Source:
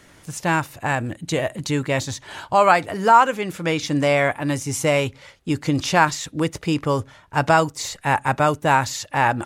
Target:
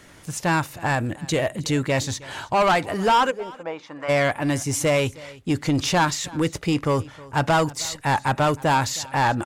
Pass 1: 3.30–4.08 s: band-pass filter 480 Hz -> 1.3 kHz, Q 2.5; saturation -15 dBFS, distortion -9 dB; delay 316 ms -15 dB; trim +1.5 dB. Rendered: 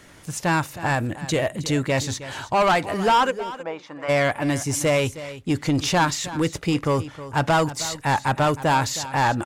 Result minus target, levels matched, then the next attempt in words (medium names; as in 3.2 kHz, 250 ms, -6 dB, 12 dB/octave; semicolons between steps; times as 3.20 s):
echo-to-direct +6.5 dB
3.30–4.08 s: band-pass filter 480 Hz -> 1.3 kHz, Q 2.5; saturation -15 dBFS, distortion -9 dB; delay 316 ms -21.5 dB; trim +1.5 dB